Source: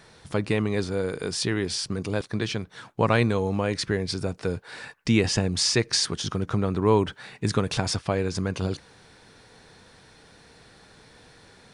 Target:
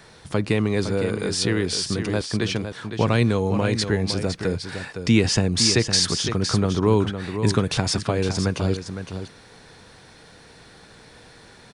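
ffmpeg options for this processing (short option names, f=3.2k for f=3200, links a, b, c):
-filter_complex "[0:a]acrossover=split=370|3000[a][b][c];[b]acompressor=threshold=-29dB:ratio=2.5[d];[a][d][c]amix=inputs=3:normalize=0,aecho=1:1:511:0.376,volume=4dB"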